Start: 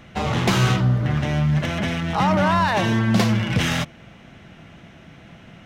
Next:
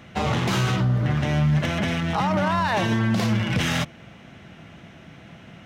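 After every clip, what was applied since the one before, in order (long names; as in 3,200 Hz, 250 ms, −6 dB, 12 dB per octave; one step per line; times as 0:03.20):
brickwall limiter −13.5 dBFS, peak gain reduction 9 dB
high-pass filter 56 Hz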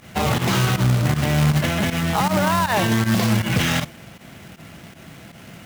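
log-companded quantiser 4 bits
fake sidechain pumping 158 BPM, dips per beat 1, −14 dB, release 72 ms
level +3 dB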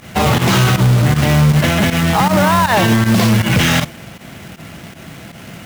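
hard clipping −14 dBFS, distortion −14 dB
level +7.5 dB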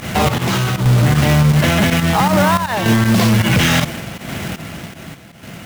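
sample-and-hold tremolo, depth 85%
boost into a limiter +16.5 dB
level −6.5 dB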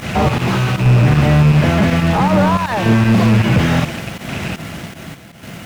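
loose part that buzzes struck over −24 dBFS, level −12 dBFS
slew-rate limiting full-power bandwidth 170 Hz
level +1.5 dB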